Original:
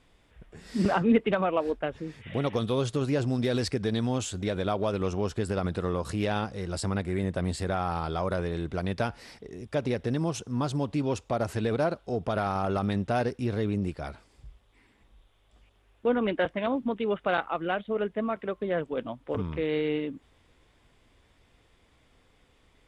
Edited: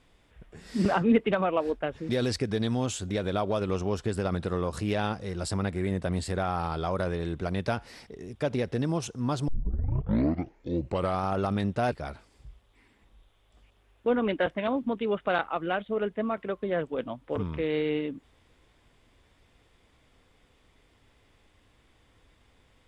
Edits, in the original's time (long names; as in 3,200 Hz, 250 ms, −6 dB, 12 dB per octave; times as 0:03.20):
0:02.09–0:03.41: remove
0:10.80: tape start 1.77 s
0:13.24–0:13.91: remove